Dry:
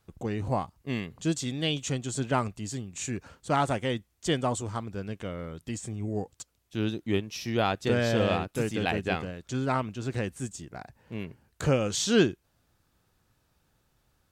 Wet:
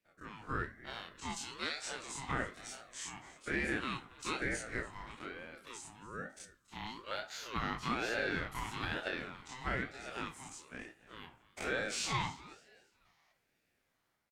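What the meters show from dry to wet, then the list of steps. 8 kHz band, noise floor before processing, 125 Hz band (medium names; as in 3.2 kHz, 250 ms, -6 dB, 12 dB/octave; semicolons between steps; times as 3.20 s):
-8.0 dB, -72 dBFS, -15.5 dB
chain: every event in the spectrogram widened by 60 ms; high-pass 740 Hz 12 dB/octave; time-frequency box 13.05–13.32 s, 1.2–6.4 kHz +10 dB; treble shelf 2 kHz -10 dB; peak limiter -21.5 dBFS, peak gain reduction 7.5 dB; level rider gain up to 6.5 dB; frequency-shifting echo 280 ms, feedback 33%, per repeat +89 Hz, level -19 dB; simulated room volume 200 m³, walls furnished, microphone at 0.75 m; ring modulator with a swept carrier 790 Hz, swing 35%, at 1.1 Hz; trim -7.5 dB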